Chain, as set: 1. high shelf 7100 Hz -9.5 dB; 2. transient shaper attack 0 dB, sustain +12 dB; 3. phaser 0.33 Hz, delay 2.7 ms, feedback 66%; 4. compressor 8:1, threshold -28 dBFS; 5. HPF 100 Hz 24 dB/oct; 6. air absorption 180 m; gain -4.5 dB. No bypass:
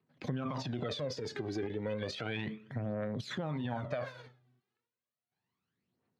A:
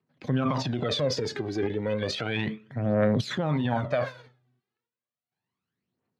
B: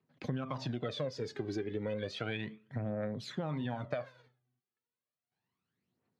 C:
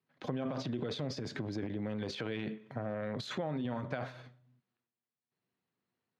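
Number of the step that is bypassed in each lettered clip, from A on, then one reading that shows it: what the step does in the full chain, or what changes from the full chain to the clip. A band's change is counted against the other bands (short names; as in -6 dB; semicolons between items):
4, momentary loudness spread change +3 LU; 2, 8 kHz band -2.5 dB; 3, crest factor change +1.5 dB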